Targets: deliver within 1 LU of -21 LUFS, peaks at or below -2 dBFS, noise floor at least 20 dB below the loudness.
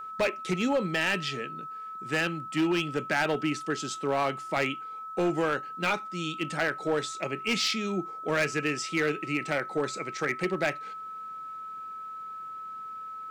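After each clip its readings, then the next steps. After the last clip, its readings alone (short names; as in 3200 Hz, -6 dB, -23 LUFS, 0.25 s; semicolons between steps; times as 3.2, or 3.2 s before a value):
clipped 1.1%; flat tops at -20.5 dBFS; steady tone 1300 Hz; tone level -37 dBFS; loudness -30.0 LUFS; peak -20.5 dBFS; loudness target -21.0 LUFS
-> clip repair -20.5 dBFS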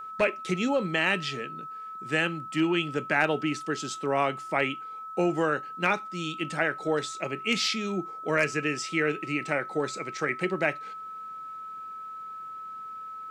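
clipped 0.0%; steady tone 1300 Hz; tone level -37 dBFS
-> notch 1300 Hz, Q 30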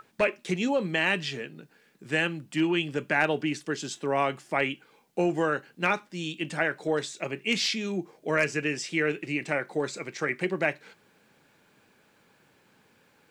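steady tone none; loudness -28.5 LUFS; peak -11.0 dBFS; loudness target -21.0 LUFS
-> gain +7.5 dB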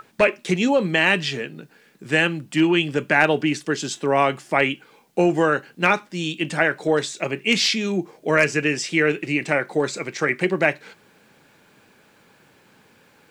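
loudness -21.0 LUFS; peak -3.5 dBFS; noise floor -56 dBFS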